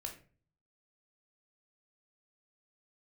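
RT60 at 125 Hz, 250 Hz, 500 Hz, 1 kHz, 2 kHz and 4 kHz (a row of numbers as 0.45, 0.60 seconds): 0.80, 0.60, 0.45, 0.35, 0.35, 0.25 seconds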